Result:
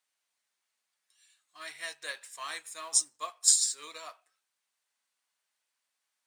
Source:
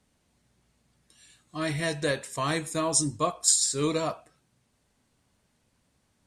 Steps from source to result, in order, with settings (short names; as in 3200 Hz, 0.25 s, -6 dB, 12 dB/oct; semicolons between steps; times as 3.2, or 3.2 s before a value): G.711 law mismatch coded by mu; HPF 1200 Hz 12 dB/oct; upward expander 1.5:1, over -52 dBFS